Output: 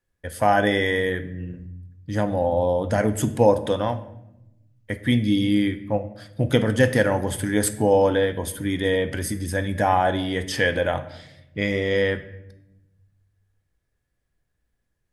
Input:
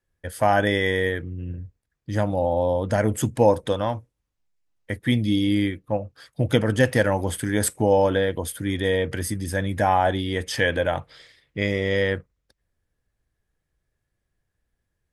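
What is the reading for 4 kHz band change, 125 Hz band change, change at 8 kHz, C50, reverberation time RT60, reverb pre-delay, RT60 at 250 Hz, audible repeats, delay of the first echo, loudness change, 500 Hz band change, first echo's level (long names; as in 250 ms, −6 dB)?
+0.5 dB, −0.5 dB, 0.0 dB, 13.5 dB, 0.85 s, 4 ms, 1.4 s, no echo audible, no echo audible, +0.5 dB, +1.0 dB, no echo audible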